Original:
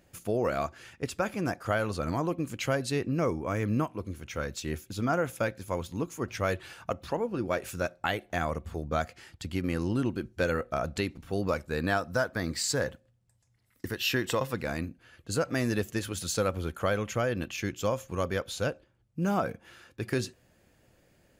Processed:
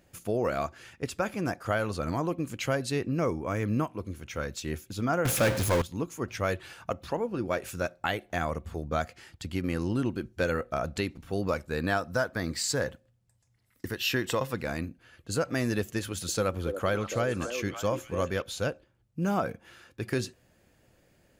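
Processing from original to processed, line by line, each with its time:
5.25–5.82 power-law curve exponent 0.35
16–18.42 delay with a stepping band-pass 0.284 s, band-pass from 390 Hz, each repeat 1.4 oct, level -4 dB

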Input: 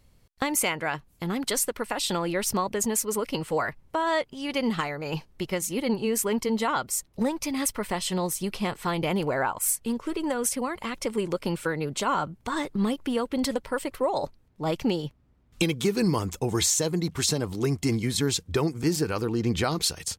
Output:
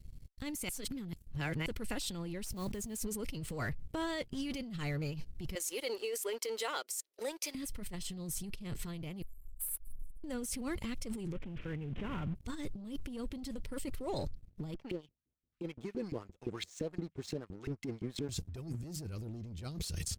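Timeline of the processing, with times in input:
0.69–1.66 reverse
2.44–2.99 block floating point 5-bit
5.55–7.55 steep high-pass 410 Hz
9.22–10.24 inverse Chebyshev band-stop 130–3900 Hz, stop band 60 dB
11.32–12.35 CVSD 16 kbps
14.74–18.29 LFO band-pass saw up 5.8 Hz 320–2400 Hz
whole clip: passive tone stack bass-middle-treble 10-0-1; sample leveller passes 2; negative-ratio compressor -46 dBFS, ratio -1; gain +7 dB

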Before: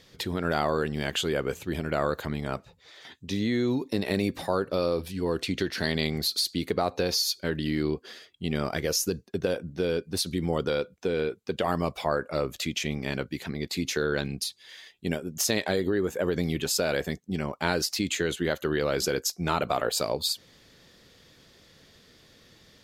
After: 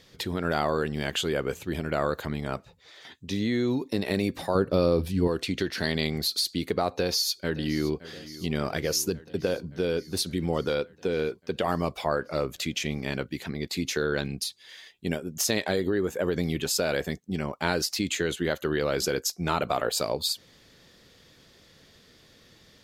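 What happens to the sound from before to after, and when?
4.55–5.28 low shelf 360 Hz +9.5 dB
6.93–8.01 echo throw 0.57 s, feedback 75%, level -17 dB

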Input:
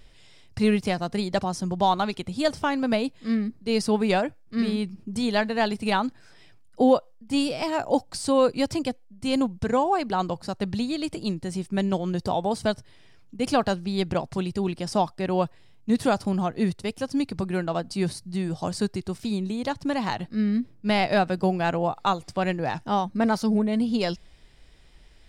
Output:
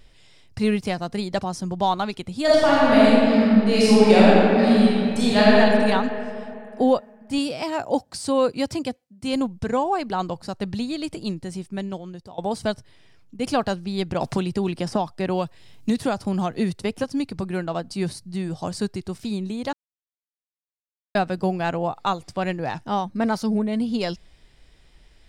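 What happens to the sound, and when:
2.44–5.58 reverb throw, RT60 2.7 s, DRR -9 dB
7.38–9.34 HPF 48 Hz
11.34–12.38 fade out, to -21 dB
14.21–17.04 three-band squash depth 100%
19.73–21.15 mute

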